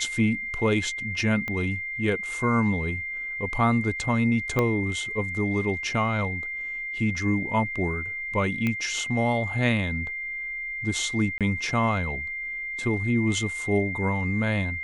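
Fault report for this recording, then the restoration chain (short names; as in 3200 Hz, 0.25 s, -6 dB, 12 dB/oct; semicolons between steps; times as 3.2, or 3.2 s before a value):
tone 2100 Hz -30 dBFS
1.48 pop -18 dBFS
4.59 pop -11 dBFS
8.67 pop -14 dBFS
11.38–11.41 gap 27 ms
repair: de-click; notch 2100 Hz, Q 30; interpolate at 11.38, 27 ms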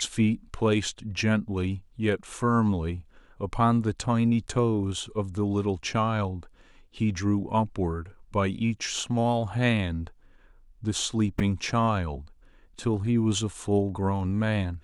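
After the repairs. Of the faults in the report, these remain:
1.48 pop
4.59 pop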